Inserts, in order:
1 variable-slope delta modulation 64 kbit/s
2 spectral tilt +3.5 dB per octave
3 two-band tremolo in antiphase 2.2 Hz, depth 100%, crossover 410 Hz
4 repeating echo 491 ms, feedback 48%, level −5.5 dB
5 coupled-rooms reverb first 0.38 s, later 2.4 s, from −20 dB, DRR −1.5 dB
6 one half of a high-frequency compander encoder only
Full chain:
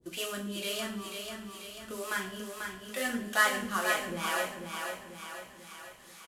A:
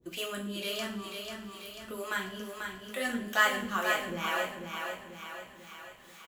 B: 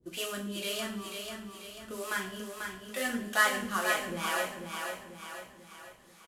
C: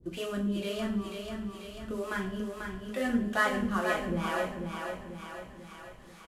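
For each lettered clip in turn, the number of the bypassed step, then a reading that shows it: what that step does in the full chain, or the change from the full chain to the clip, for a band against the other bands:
1, 8 kHz band −5.0 dB
6, change in momentary loudness spread +1 LU
2, 8 kHz band −12.0 dB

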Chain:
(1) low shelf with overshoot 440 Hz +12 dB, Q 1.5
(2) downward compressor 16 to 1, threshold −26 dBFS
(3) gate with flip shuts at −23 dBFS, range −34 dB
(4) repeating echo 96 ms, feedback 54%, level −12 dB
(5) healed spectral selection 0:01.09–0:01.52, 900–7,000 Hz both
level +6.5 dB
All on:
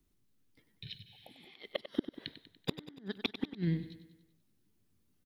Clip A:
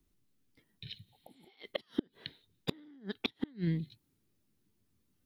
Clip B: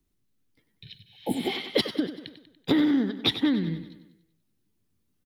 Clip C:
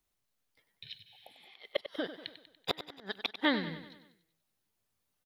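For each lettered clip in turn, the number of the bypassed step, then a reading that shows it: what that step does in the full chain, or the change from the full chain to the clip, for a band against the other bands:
4, change in momentary loudness spread −4 LU
3, change in momentary loudness spread −3 LU
1, 125 Hz band −16.0 dB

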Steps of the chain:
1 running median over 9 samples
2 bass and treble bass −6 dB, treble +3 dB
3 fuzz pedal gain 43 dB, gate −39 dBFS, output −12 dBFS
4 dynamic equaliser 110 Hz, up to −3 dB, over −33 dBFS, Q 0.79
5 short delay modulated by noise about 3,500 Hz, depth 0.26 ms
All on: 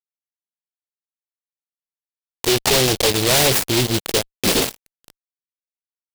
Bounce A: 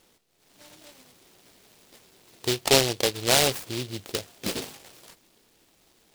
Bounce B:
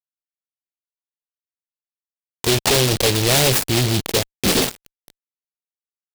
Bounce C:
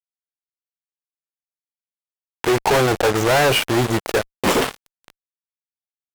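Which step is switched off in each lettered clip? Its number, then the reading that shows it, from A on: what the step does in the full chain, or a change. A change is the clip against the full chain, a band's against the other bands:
3, 125 Hz band −2.5 dB
2, 125 Hz band +4.5 dB
5, 8 kHz band −10.0 dB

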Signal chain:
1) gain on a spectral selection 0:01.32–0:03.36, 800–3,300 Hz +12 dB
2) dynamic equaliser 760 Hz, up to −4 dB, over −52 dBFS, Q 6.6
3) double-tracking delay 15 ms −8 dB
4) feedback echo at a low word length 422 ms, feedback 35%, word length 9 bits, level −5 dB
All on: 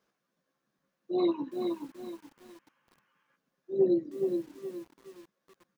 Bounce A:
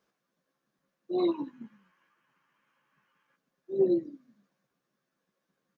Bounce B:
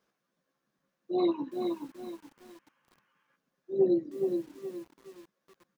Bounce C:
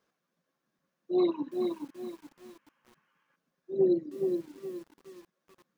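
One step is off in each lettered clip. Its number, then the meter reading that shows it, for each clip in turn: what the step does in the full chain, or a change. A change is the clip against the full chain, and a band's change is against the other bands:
4, change in momentary loudness spread −4 LU
2, 1 kHz band +2.0 dB
3, 1 kHz band −2.0 dB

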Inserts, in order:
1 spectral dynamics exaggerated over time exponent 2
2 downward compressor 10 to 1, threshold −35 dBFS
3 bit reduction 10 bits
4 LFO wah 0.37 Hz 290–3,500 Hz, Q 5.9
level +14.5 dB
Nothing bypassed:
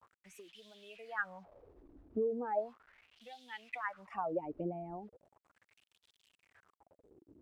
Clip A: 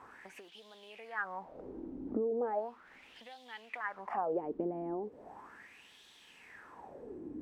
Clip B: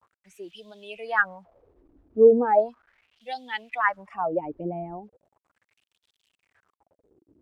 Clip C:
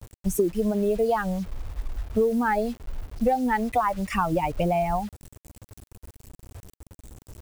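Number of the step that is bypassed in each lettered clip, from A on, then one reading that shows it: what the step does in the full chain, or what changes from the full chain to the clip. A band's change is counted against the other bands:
1, 125 Hz band −3.5 dB
2, average gain reduction 9.0 dB
4, 2 kHz band −7.0 dB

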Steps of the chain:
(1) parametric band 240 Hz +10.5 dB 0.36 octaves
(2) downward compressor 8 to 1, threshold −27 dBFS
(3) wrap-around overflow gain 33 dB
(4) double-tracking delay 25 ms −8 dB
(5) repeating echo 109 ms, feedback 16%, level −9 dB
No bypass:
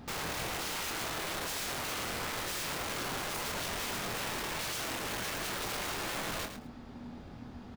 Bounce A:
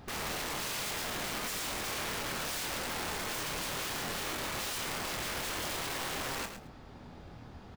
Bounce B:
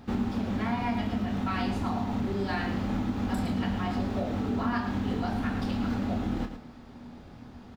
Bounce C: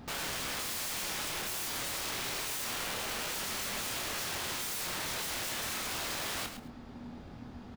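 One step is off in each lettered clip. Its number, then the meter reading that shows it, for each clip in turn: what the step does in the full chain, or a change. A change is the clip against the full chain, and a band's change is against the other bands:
1, change in momentary loudness spread +3 LU
3, change in crest factor +3.0 dB
2, average gain reduction 5.5 dB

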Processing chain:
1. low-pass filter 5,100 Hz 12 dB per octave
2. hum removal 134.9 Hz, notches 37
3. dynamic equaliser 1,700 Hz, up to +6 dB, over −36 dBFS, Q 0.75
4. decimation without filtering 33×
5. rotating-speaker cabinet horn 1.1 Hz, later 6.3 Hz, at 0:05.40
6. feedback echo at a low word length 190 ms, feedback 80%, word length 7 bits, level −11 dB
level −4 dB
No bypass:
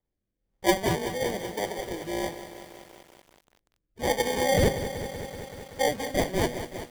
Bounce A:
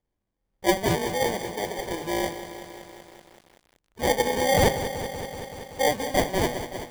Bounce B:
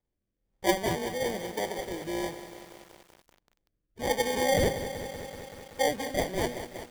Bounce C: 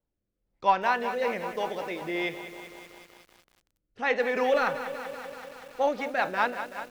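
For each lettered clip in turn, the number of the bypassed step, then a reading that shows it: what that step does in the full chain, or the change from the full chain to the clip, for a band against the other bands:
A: 5, change in integrated loudness +2.5 LU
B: 3, change in integrated loudness −2.0 LU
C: 4, change in crest factor −3.0 dB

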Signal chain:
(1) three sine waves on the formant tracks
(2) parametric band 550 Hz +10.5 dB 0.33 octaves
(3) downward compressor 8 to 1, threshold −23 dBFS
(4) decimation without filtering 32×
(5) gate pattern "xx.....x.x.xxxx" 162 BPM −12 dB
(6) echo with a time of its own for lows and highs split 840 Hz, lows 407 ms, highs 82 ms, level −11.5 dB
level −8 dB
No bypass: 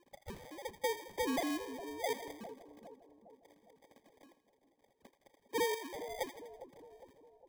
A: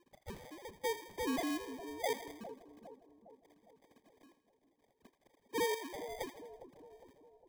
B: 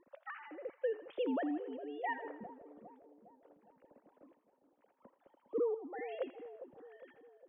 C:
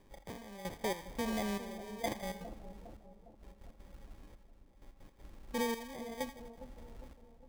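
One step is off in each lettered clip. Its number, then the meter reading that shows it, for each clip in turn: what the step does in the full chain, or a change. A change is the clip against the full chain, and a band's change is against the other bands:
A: 2, 125 Hz band +1.5 dB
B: 4, 4 kHz band −12.5 dB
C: 1, 125 Hz band +11.0 dB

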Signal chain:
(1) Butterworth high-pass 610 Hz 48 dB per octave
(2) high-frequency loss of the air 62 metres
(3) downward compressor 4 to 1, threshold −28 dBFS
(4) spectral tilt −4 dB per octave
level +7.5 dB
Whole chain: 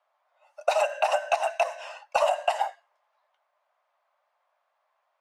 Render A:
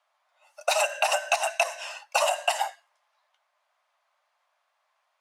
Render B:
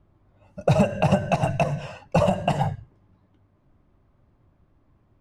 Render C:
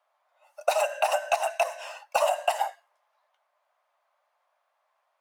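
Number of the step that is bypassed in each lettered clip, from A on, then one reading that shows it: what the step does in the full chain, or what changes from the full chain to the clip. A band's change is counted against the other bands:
4, 8 kHz band +9.5 dB
1, 500 Hz band +3.5 dB
2, 8 kHz band +5.0 dB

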